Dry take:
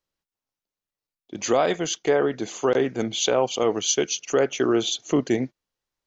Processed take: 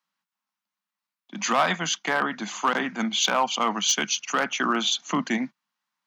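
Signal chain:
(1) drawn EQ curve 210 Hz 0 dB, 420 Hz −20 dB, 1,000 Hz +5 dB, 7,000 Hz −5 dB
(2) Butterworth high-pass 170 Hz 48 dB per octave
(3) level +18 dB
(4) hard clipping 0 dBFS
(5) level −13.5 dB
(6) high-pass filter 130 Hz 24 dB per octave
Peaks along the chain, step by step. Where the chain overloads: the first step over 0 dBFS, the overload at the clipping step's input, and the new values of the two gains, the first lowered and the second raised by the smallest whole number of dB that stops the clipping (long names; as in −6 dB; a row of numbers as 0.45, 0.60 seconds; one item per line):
−11.0, −11.5, +6.5, 0.0, −13.5, −10.0 dBFS
step 3, 6.5 dB
step 3 +11 dB, step 5 −6.5 dB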